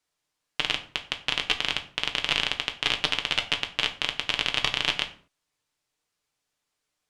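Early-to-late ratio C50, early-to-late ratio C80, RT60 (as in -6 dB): 13.5 dB, 17.5 dB, 0.45 s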